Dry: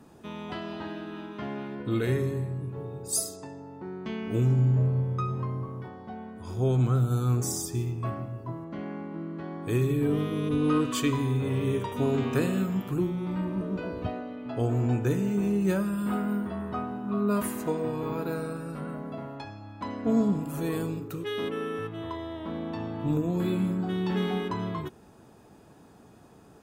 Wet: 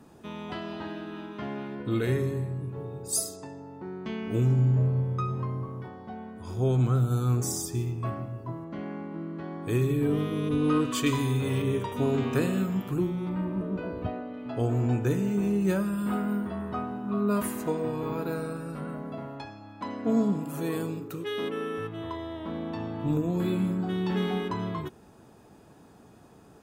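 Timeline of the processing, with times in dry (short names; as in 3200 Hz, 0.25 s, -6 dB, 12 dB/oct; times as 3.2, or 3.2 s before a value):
11.06–11.62 high shelf 2500 Hz +9 dB
13.29–14.34 bell 6100 Hz -8 dB 1.9 oct
19.46–21.78 HPF 140 Hz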